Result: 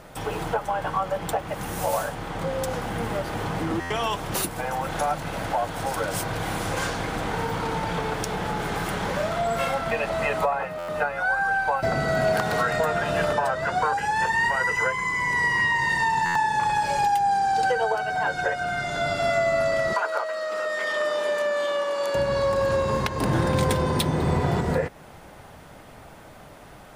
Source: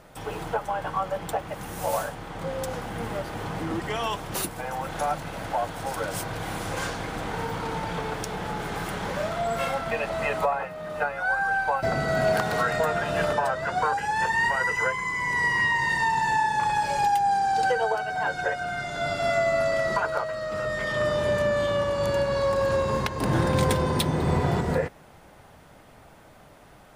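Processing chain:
downward compressor 1.5 to 1, threshold −33 dBFS, peak gain reduction 5.5 dB
0:19.93–0:22.15: Bessel high-pass filter 450 Hz, order 4
buffer that repeats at 0:03.80/0:10.78/0:16.25, samples 512, times 8
level +5.5 dB

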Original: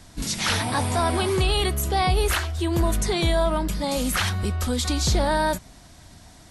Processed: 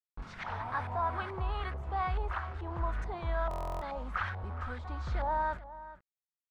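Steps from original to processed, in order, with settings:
parametric band 280 Hz −15 dB 2.8 octaves
bit-depth reduction 6 bits, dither none
auto-filter low-pass saw up 2.3 Hz 800–1,600 Hz
slap from a distant wall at 72 metres, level −15 dB
buffer that repeats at 0:03.49, samples 1,024, times 13
level −7.5 dB

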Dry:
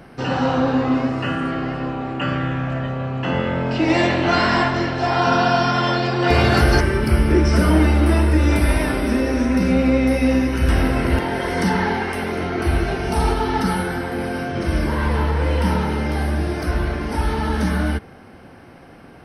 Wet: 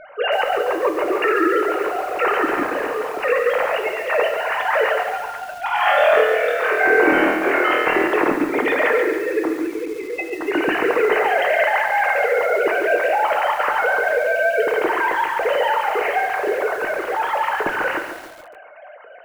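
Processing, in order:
three sine waves on the formant tracks
dynamic equaliser 1,900 Hz, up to +3 dB, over −35 dBFS, Q 4.9
compressor whose output falls as the input rises −20 dBFS, ratio −0.5
high-frequency loss of the air 100 metres
0:05.64–0:08.05: flutter between parallel walls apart 4.3 metres, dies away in 0.58 s
convolution reverb RT60 0.75 s, pre-delay 6 ms, DRR 6 dB
feedback echo at a low word length 141 ms, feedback 55%, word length 6 bits, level −8 dB

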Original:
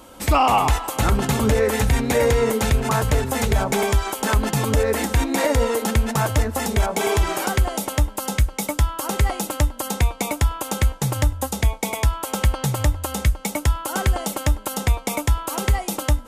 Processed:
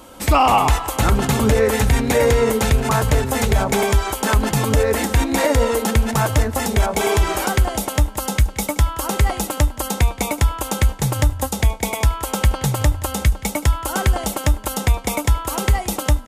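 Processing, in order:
slap from a distant wall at 30 metres, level −18 dB
level +2.5 dB

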